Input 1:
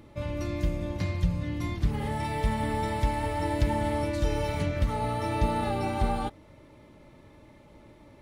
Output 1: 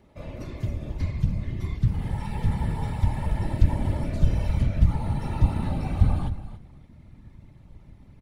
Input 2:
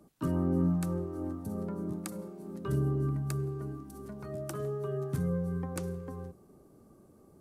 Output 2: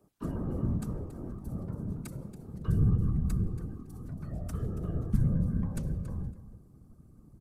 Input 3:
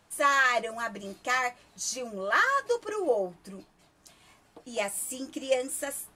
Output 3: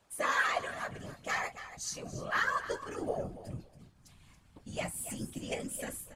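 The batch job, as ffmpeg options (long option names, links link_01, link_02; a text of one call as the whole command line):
ffmpeg -i in.wav -af "aecho=1:1:279|558:0.211|0.0338,afftfilt=real='hypot(re,im)*cos(2*PI*random(0))':imag='hypot(re,im)*sin(2*PI*random(1))':win_size=512:overlap=0.75,asubboost=boost=8:cutoff=160" out.wav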